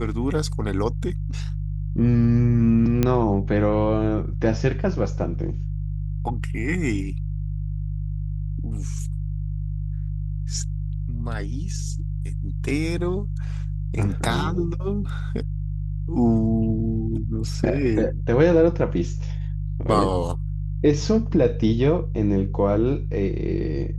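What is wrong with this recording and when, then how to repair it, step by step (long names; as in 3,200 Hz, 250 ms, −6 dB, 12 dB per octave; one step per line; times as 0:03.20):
mains hum 50 Hz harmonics 3 −27 dBFS
0:03.03: click −7 dBFS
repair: click removal
hum removal 50 Hz, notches 3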